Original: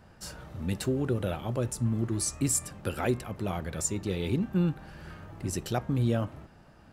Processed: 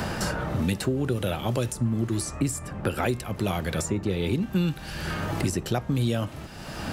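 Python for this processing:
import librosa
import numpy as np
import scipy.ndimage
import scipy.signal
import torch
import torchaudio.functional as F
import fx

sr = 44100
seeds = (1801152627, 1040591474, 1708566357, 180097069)

y = fx.band_squash(x, sr, depth_pct=100)
y = y * 10.0 ** (3.0 / 20.0)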